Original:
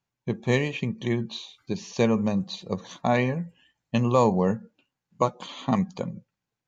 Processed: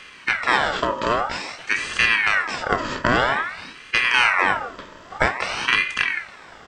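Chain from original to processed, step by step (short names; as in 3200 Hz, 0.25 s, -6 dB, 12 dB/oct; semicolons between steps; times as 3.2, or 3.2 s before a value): per-bin compression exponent 0.4; doubler 30 ms -12 dB; ring modulator with a swept carrier 1500 Hz, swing 50%, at 0.51 Hz; gain +2 dB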